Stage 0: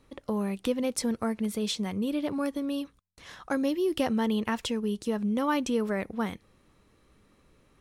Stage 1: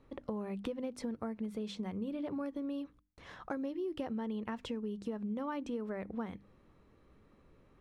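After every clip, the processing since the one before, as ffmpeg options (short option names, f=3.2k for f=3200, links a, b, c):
-af "lowpass=f=1.3k:p=1,bandreject=f=50:t=h:w=6,bandreject=f=100:t=h:w=6,bandreject=f=150:t=h:w=6,bandreject=f=200:t=h:w=6,bandreject=f=250:t=h:w=6,bandreject=f=300:t=h:w=6,acompressor=threshold=-36dB:ratio=5"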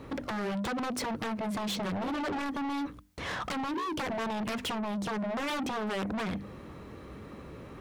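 -af "aeval=exprs='0.0668*sin(PI/2*6.31*val(0)/0.0668)':c=same,highpass=60,asoftclip=type=tanh:threshold=-30.5dB"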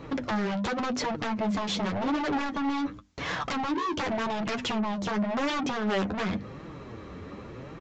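-af "flanger=delay=5.8:depth=6:regen=31:speed=0.9:shape=triangular,aresample=16000,aresample=44100,volume=7.5dB"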